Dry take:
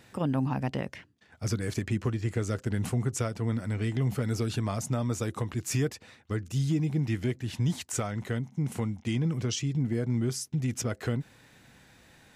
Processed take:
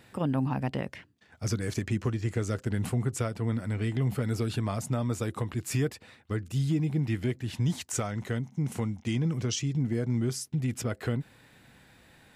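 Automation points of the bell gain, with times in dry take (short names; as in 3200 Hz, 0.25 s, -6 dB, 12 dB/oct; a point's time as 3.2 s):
bell 6100 Hz 0.42 oct
0.68 s -6.5 dB
1.46 s +1.5 dB
2.3 s +1.5 dB
2.99 s -6.5 dB
7.14 s -6.5 dB
7.92 s +1.5 dB
10.21 s +1.5 dB
10.64 s -7.5 dB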